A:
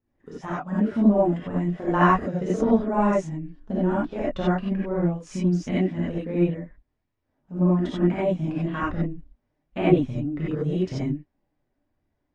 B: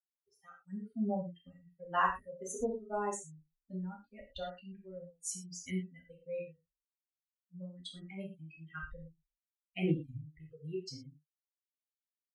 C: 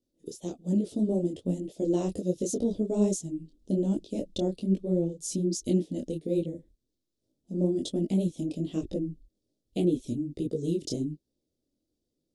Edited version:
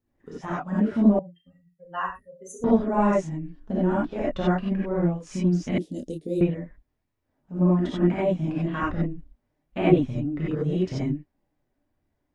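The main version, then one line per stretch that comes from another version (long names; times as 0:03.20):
A
0:01.19–0:02.64: punch in from B
0:05.78–0:06.41: punch in from C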